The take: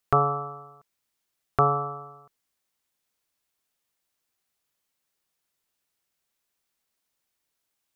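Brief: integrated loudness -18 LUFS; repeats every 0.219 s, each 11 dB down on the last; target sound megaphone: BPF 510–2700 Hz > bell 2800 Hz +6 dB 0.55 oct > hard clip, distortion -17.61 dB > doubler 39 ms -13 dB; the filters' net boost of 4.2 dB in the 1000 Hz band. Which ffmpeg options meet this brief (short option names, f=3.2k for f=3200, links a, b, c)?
-filter_complex "[0:a]highpass=510,lowpass=2.7k,equalizer=f=1k:t=o:g=6,equalizer=f=2.8k:t=o:w=0.55:g=6,aecho=1:1:219|438|657:0.282|0.0789|0.0221,asoftclip=type=hard:threshold=-11dB,asplit=2[a][b];[b]adelay=39,volume=-13dB[c];[a][c]amix=inputs=2:normalize=0,volume=5dB"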